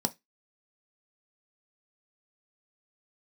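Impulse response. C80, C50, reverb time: 34.5 dB, 23.5 dB, 0.15 s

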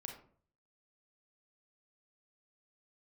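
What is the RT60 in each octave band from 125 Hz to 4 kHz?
0.75 s, 0.55 s, 0.55 s, 0.45 s, 0.35 s, 0.25 s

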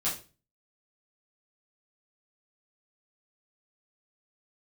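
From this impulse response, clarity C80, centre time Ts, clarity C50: 14.0 dB, 30 ms, 7.5 dB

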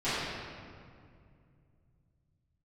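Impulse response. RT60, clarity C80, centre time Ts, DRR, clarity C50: 2.3 s, -1.5 dB, 142 ms, -17.5 dB, -4.0 dB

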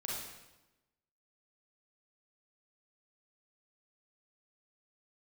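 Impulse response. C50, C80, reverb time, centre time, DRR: -1.5 dB, 2.5 dB, 1.0 s, 76 ms, -4.5 dB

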